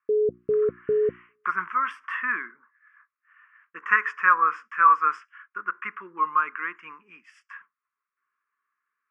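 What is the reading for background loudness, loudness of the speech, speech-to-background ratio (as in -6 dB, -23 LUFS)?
-25.5 LUFS, -24.0 LUFS, 1.5 dB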